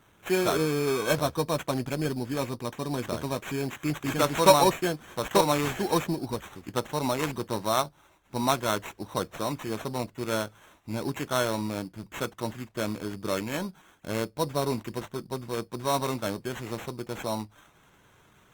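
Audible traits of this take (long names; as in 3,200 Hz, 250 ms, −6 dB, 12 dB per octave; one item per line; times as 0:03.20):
aliases and images of a low sample rate 4,800 Hz, jitter 0%
Opus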